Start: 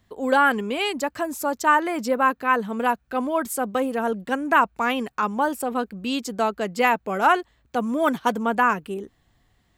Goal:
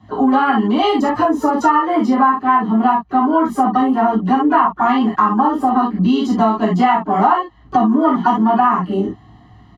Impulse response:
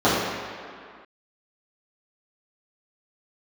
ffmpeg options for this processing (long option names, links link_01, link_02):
-filter_complex "[0:a]lowpass=frequency=3600:poles=1,aecho=1:1:1:0.88,asplit=2[link_01][link_02];[link_02]asetrate=66075,aresample=44100,atempo=0.66742,volume=-15dB[link_03];[link_01][link_03]amix=inputs=2:normalize=0[link_04];[1:a]atrim=start_sample=2205,atrim=end_sample=3528[link_05];[link_04][link_05]afir=irnorm=-1:irlink=0,acompressor=threshold=-8dB:ratio=5,volume=-4.5dB"